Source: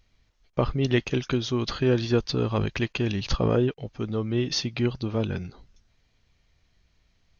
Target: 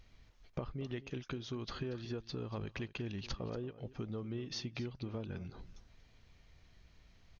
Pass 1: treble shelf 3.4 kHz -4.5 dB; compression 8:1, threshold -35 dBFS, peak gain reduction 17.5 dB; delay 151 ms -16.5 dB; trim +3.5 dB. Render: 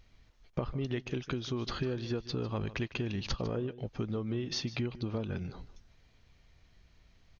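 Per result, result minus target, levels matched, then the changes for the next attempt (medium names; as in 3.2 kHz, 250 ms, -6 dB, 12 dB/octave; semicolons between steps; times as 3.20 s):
echo 83 ms early; compression: peak gain reduction -6.5 dB
change: delay 234 ms -16.5 dB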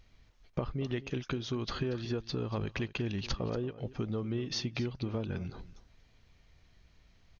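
compression: peak gain reduction -6.5 dB
change: compression 8:1, threshold -42.5 dBFS, peak gain reduction 24 dB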